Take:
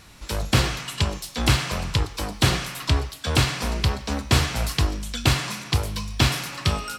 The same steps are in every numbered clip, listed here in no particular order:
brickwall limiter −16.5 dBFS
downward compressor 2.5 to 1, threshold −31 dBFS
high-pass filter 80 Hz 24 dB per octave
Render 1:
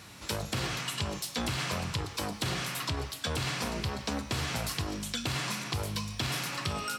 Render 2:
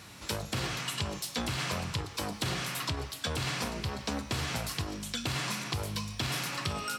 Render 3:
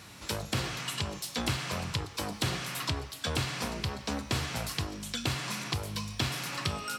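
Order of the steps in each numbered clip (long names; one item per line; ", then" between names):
brickwall limiter, then high-pass filter, then downward compressor
brickwall limiter, then downward compressor, then high-pass filter
downward compressor, then brickwall limiter, then high-pass filter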